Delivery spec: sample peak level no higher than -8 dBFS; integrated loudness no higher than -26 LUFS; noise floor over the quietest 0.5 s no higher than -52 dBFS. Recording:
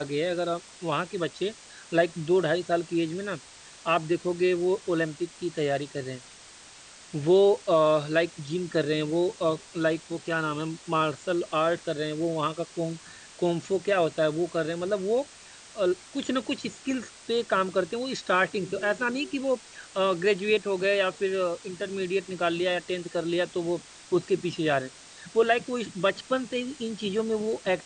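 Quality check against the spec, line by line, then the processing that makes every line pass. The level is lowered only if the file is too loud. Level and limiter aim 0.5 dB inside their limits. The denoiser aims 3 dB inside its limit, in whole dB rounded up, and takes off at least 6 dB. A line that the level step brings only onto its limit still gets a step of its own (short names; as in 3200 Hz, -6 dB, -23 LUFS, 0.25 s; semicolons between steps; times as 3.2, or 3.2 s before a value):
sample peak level -10.5 dBFS: OK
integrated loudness -27.5 LUFS: OK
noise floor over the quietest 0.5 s -49 dBFS: fail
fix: denoiser 6 dB, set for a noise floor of -49 dBFS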